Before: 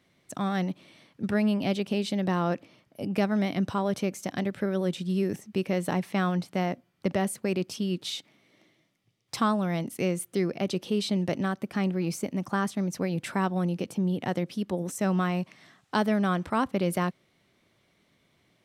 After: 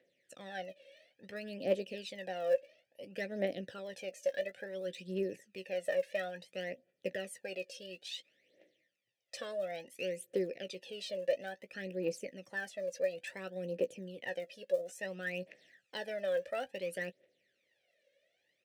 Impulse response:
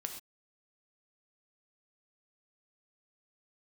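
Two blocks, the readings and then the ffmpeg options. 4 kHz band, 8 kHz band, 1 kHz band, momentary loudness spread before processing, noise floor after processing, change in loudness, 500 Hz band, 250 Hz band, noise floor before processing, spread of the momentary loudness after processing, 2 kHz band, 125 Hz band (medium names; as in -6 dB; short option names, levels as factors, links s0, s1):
-8.5 dB, -12.0 dB, -17.0 dB, 6 LU, -80 dBFS, -10.0 dB, -4.5 dB, -19.5 dB, -69 dBFS, 10 LU, -6.5 dB, -21.5 dB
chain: -filter_complex "[0:a]asplit=3[s0][s1][s2];[s0]bandpass=f=530:t=q:w=8,volume=1[s3];[s1]bandpass=f=1840:t=q:w=8,volume=0.501[s4];[s2]bandpass=f=2480:t=q:w=8,volume=0.355[s5];[s3][s4][s5]amix=inputs=3:normalize=0,aphaser=in_gain=1:out_gain=1:delay=1.9:decay=0.73:speed=0.58:type=triangular,bass=f=250:g=-3,treble=f=4000:g=14,asplit=2[s6][s7];[s7]adelay=16,volume=0.266[s8];[s6][s8]amix=inputs=2:normalize=0"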